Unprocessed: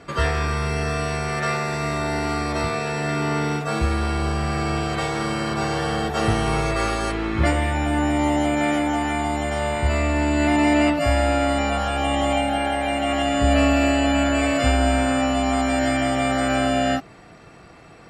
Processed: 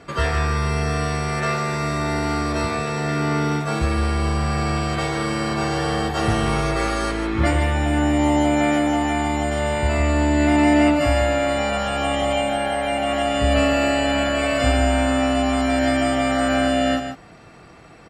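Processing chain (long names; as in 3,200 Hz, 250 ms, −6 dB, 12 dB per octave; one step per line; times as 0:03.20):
single-tap delay 149 ms −8 dB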